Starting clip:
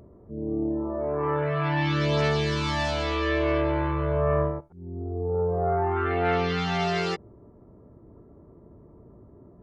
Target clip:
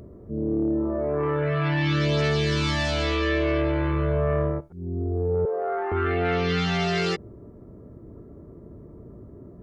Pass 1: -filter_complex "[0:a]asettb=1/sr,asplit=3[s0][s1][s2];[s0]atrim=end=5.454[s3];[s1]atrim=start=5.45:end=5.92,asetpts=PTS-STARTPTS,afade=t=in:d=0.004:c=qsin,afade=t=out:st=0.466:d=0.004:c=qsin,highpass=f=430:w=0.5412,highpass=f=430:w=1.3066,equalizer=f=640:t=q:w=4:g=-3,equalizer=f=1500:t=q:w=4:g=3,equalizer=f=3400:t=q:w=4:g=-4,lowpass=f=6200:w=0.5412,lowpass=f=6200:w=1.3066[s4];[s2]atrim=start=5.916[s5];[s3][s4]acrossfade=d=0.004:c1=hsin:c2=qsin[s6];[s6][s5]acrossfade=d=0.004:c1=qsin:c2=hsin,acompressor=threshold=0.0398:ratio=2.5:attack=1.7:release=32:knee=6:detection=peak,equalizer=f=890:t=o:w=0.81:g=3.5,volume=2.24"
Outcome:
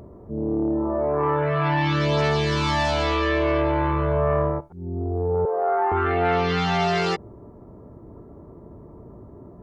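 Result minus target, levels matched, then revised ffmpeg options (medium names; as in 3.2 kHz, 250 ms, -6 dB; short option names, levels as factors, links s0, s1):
1 kHz band +5.5 dB
-filter_complex "[0:a]asettb=1/sr,asplit=3[s0][s1][s2];[s0]atrim=end=5.454[s3];[s1]atrim=start=5.45:end=5.92,asetpts=PTS-STARTPTS,afade=t=in:d=0.004:c=qsin,afade=t=out:st=0.466:d=0.004:c=qsin,highpass=f=430:w=0.5412,highpass=f=430:w=1.3066,equalizer=f=640:t=q:w=4:g=-3,equalizer=f=1500:t=q:w=4:g=3,equalizer=f=3400:t=q:w=4:g=-4,lowpass=f=6200:w=0.5412,lowpass=f=6200:w=1.3066[s4];[s2]atrim=start=5.916[s5];[s3][s4]acrossfade=d=0.004:c1=hsin:c2=qsin[s6];[s6][s5]acrossfade=d=0.004:c1=qsin:c2=hsin,acompressor=threshold=0.0398:ratio=2.5:attack=1.7:release=32:knee=6:detection=peak,equalizer=f=890:t=o:w=0.81:g=-8,volume=2.24"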